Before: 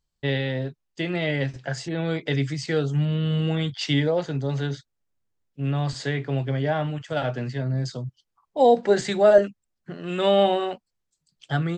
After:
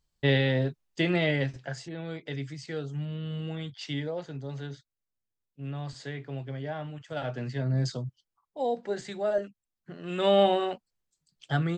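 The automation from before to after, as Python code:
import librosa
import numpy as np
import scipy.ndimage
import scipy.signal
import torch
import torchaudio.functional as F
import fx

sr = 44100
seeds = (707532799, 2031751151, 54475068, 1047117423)

y = fx.gain(x, sr, db=fx.line((1.11, 1.5), (2.0, -11.0), (6.92, -11.0), (7.86, 0.0), (8.62, -12.5), (9.43, -12.5), (10.35, -2.5)))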